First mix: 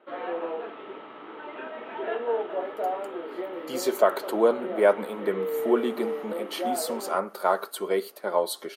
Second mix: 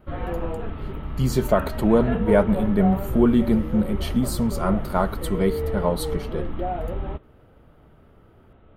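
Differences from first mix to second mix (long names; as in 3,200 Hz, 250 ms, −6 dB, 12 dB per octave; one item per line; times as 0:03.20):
speech: entry −2.50 s
master: remove high-pass filter 350 Hz 24 dB per octave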